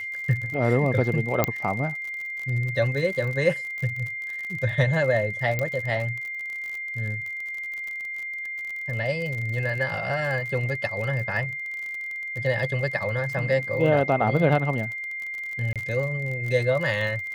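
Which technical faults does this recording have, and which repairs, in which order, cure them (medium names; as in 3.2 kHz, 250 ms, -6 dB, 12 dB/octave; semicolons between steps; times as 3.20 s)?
crackle 44 per s -31 dBFS
whine 2.1 kHz -30 dBFS
1.44 s: pop -6 dBFS
5.59 s: pop -13 dBFS
15.73–15.76 s: dropout 27 ms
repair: de-click; band-stop 2.1 kHz, Q 30; interpolate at 15.73 s, 27 ms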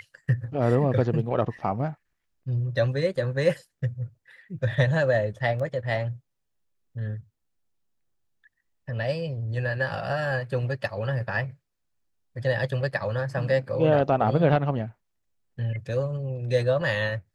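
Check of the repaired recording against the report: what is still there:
5.59 s: pop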